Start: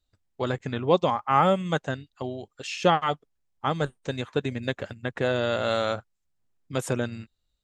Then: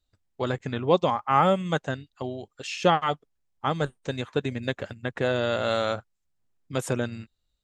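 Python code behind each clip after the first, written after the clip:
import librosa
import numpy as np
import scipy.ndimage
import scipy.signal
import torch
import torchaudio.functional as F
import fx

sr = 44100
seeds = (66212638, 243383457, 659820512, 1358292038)

y = x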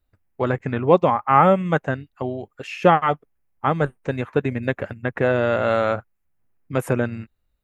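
y = fx.band_shelf(x, sr, hz=5200.0, db=-13.5, octaves=1.7)
y = y * 10.0 ** (6.0 / 20.0)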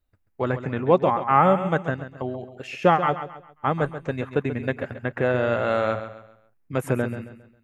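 y = fx.echo_feedback(x, sr, ms=135, feedback_pct=36, wet_db=-11.0)
y = y * 10.0 ** (-3.0 / 20.0)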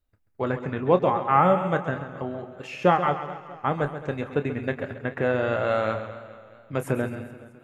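y = fx.doubler(x, sr, ms=28.0, db=-11.5)
y = fx.echo_warbled(y, sr, ms=214, feedback_pct=56, rate_hz=2.8, cents=81, wet_db=-16.0)
y = y * 10.0 ** (-2.0 / 20.0)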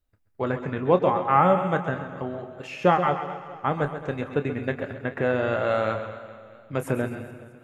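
y = fx.echo_feedback(x, sr, ms=124, feedback_pct=58, wet_db=-16.0)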